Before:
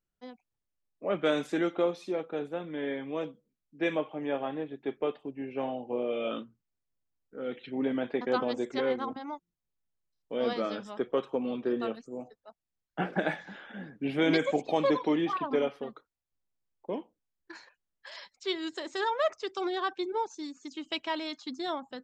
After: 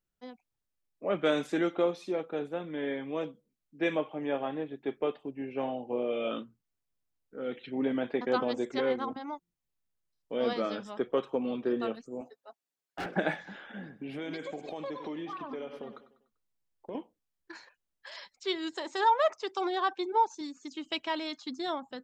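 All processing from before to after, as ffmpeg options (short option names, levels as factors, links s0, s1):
-filter_complex "[0:a]asettb=1/sr,asplit=3[s0][s1][s2];[s0]atrim=end=12.214[s3];[s1]atrim=start=12.21:end=13.06,asetpts=PTS-STARTPTS,afade=t=in:d=0.004:c=qsin,afade=t=out:st=0.846:d=0.004:c=qsin,highpass=280,aecho=1:1:7.3:0.74,atrim=end_sample=37485,asoftclip=type=hard:threshold=0.0224[s4];[s2]atrim=start=13.056[s5];[s3][s4]acrossfade=d=0.004:c1=hsin:c2=qsin[s6];[s6][s5]acrossfade=d=0.004:c1=qsin:c2=hsin,asettb=1/sr,asplit=3[s7][s8][s9];[s7]atrim=end=13.794[s10];[s8]atrim=start=13.79:end=16.95,asetpts=PTS-STARTPTS,afade=t=in:d=0.004:c=qsin,afade=t=out:st=3.156:d=0.004:c=qsin,aecho=1:1:98|196|294|392:0.141|0.0636|0.0286|0.0129,atrim=end_sample=139356,acompressor=threshold=0.0141:ratio=4:attack=3.2:release=140:knee=1:detection=peak[s11];[s9]atrim=start=16.946[s12];[s10][s11]acrossfade=d=0.004:c1=hsin:c2=qsin[s13];[s13][s12]acrossfade=d=0.004:c1=qsin:c2=hsin,asettb=1/sr,asplit=3[s14][s15][s16];[s14]atrim=end=18.724[s17];[s15]atrim=start=18.72:end=20.41,asetpts=PTS-STARTPTS,afade=t=in:d=0.004:c=qsin,afade=t=out:st=1.686:d=0.004:c=qsin,highpass=f=160:p=1,equalizer=f=890:t=o:w=0.48:g=8[s18];[s16]atrim=start=20.406[s19];[s17][s18]acrossfade=d=0.004:c1=hsin:c2=qsin[s20];[s20][s19]acrossfade=d=0.004:c1=qsin:c2=hsin"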